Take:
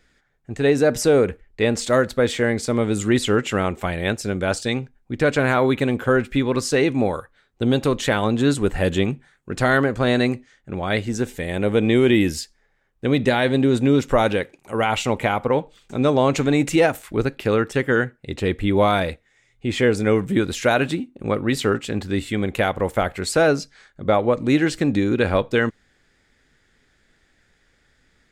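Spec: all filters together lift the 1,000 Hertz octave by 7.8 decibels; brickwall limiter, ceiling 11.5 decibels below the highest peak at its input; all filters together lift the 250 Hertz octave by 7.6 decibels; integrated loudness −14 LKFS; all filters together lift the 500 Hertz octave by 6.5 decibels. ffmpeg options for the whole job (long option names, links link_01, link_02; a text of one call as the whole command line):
ffmpeg -i in.wav -af "equalizer=frequency=250:width_type=o:gain=7.5,equalizer=frequency=500:width_type=o:gain=3.5,equalizer=frequency=1000:width_type=o:gain=9,volume=6dB,alimiter=limit=-3.5dB:level=0:latency=1" out.wav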